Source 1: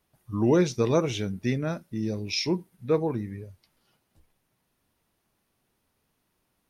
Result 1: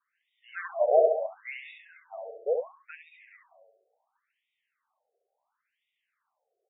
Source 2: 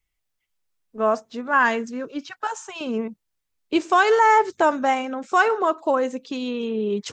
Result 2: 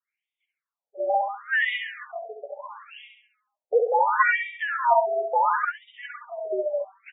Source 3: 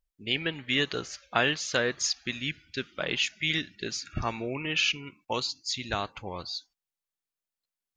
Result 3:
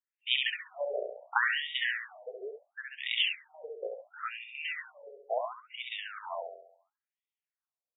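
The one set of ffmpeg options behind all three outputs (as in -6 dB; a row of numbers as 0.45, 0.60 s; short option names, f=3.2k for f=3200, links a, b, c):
-af "adynamicequalizer=threshold=0.00708:dfrequency=540:dqfactor=7.7:tfrequency=540:tqfactor=7.7:attack=5:release=100:ratio=0.375:range=4:mode=boostabove:tftype=bell,afreqshift=140,aecho=1:1:68|136|204|272|340|408|476:0.631|0.328|0.171|0.0887|0.0461|0.024|0.0125,afftfilt=real='re*between(b*sr/1024,530*pow(2700/530,0.5+0.5*sin(2*PI*0.72*pts/sr))/1.41,530*pow(2700/530,0.5+0.5*sin(2*PI*0.72*pts/sr))*1.41)':imag='im*between(b*sr/1024,530*pow(2700/530,0.5+0.5*sin(2*PI*0.72*pts/sr))/1.41,530*pow(2700/530,0.5+0.5*sin(2*PI*0.72*pts/sr))*1.41)':win_size=1024:overlap=0.75"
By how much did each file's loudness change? -0.5, -2.0, -4.0 LU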